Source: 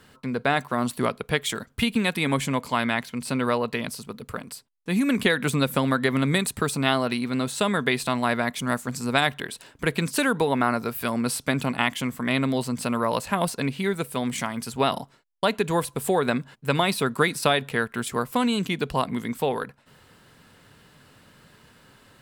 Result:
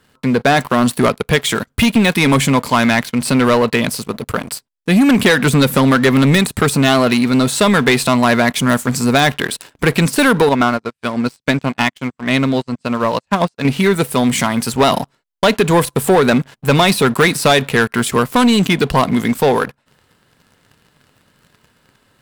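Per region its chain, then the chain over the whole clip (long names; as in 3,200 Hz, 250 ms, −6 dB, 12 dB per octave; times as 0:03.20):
0:10.49–0:13.65: low-pass filter 7,900 Hz 24 dB per octave + expander for the loud parts 2.5 to 1, over −43 dBFS
whole clip: de-essing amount 55%; leveller curve on the samples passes 3; level +3 dB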